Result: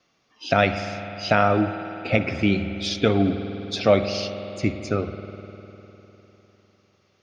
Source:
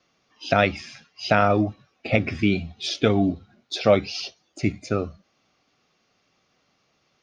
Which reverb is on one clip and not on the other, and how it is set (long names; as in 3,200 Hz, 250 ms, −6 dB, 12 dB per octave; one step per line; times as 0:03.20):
spring reverb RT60 3.6 s, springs 50 ms, chirp 35 ms, DRR 8 dB